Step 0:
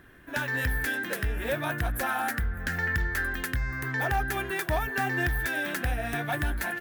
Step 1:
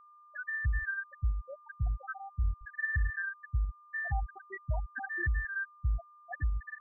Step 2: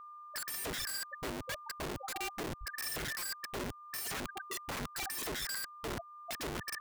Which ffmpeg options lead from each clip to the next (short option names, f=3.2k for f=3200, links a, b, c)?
-af "afftfilt=real='re*gte(hypot(re,im),0.251)':imag='im*gte(hypot(re,im),0.251)':win_size=1024:overlap=0.75,aeval=exprs='val(0)+0.00282*sin(2*PI*1200*n/s)':c=same,equalizer=f=550:w=0.95:g=-14"
-af "alimiter=level_in=7.5dB:limit=-24dB:level=0:latency=1:release=266,volume=-7.5dB,aeval=exprs='(mod(119*val(0)+1,2)-1)/119':c=same,volume=7.5dB"